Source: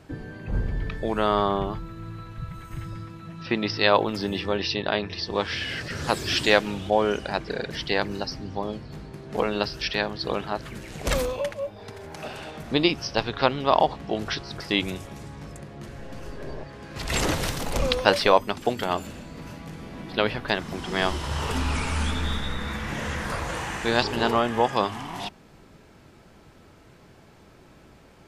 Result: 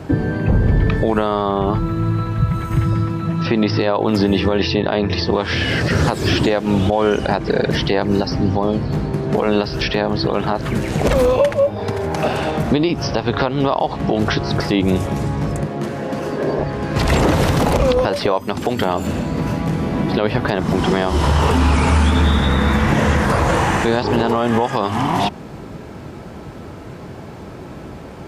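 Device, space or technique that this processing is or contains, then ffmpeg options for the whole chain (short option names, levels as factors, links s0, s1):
mastering chain: -filter_complex "[0:a]asettb=1/sr,asplit=3[s0][s1][s2];[s0]atrim=end=15.664[s3];[s1]atrim=start=15.66:end=16.59,asetpts=PTS-STARTPTS,afade=t=in:d=0.004:c=qsin,afade=t=out:st=0.926:d=0.004:c=qsin,highpass=180[s4];[s2]atrim=start=16.586[s5];[s3][s4]acrossfade=d=0.004:c1=hsin:c2=qsin[s6];[s6][s5]acrossfade=d=0.004:c1=qsin:c2=hsin,highpass=56,equalizer=f=930:t=o:w=0.77:g=1.5,acrossover=split=1200|3700[s7][s8][s9];[s7]acompressor=threshold=0.0562:ratio=4[s10];[s8]acompressor=threshold=0.02:ratio=4[s11];[s9]acompressor=threshold=0.0112:ratio=4[s12];[s10][s11][s12]amix=inputs=3:normalize=0,acompressor=threshold=0.0282:ratio=2,tiltshelf=f=1200:g=4.5,alimiter=level_in=10:limit=0.891:release=50:level=0:latency=1,volume=0.596"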